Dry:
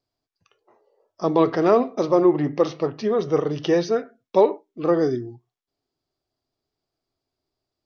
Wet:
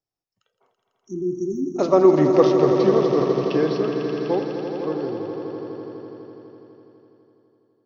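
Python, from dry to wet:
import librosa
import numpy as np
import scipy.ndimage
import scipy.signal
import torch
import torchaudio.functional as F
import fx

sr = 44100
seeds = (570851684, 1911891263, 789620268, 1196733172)

y = fx.doppler_pass(x, sr, speed_mps=36, closest_m=20.0, pass_at_s=2.3)
y = fx.spec_erase(y, sr, start_s=0.74, length_s=1.02, low_hz=400.0, high_hz=5500.0)
y = fx.echo_swell(y, sr, ms=83, loudest=5, wet_db=-10.0)
y = F.gain(torch.from_numpy(y), 3.5).numpy()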